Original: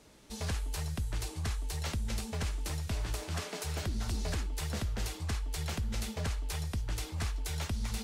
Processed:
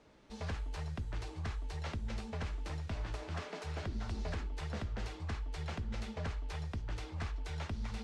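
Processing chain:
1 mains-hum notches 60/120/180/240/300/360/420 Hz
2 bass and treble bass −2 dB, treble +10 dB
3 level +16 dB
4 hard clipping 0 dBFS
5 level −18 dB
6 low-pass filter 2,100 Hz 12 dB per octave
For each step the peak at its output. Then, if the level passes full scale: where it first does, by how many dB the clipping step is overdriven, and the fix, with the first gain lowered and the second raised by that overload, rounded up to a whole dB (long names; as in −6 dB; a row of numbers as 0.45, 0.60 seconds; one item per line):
−25.0, −19.0, −3.0, −3.0, −21.0, −29.0 dBFS
no step passes full scale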